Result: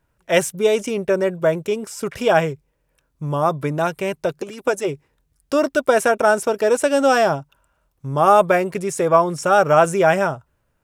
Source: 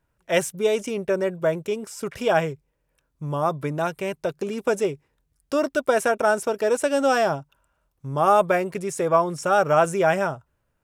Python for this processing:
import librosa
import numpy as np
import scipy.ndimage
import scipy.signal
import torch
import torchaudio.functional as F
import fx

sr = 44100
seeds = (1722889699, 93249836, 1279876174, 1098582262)

y = fx.hpss(x, sr, part='harmonic', gain_db=-12, at=(4.39, 4.87), fade=0.02)
y = y * librosa.db_to_amplitude(4.5)